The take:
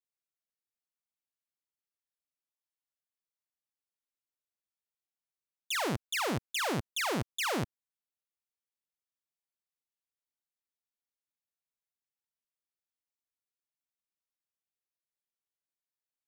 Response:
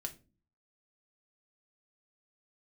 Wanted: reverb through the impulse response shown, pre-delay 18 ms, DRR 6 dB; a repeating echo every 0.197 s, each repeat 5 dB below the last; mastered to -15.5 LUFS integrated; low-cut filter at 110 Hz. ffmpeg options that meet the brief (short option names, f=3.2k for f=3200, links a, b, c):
-filter_complex "[0:a]highpass=110,aecho=1:1:197|394|591|788|985|1182|1379:0.562|0.315|0.176|0.0988|0.0553|0.031|0.0173,asplit=2[a][b];[1:a]atrim=start_sample=2205,adelay=18[c];[b][c]afir=irnorm=-1:irlink=0,volume=-4dB[d];[a][d]amix=inputs=2:normalize=0,volume=15.5dB"